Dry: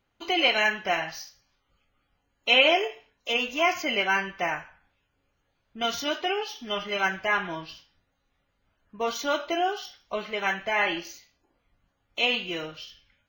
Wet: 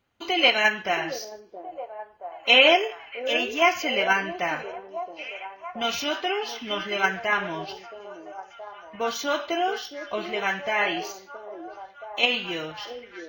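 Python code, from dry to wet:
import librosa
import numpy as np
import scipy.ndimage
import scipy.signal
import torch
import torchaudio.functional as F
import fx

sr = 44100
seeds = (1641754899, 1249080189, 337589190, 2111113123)

p1 = scipy.signal.sosfilt(scipy.signal.butter(2, 52.0, 'highpass', fs=sr, output='sos'), x)
p2 = fx.level_steps(p1, sr, step_db=22)
p3 = p1 + (p2 * 10.0 ** (-3.0 / 20.0))
y = fx.echo_stepped(p3, sr, ms=673, hz=410.0, octaves=0.7, feedback_pct=70, wet_db=-7.0)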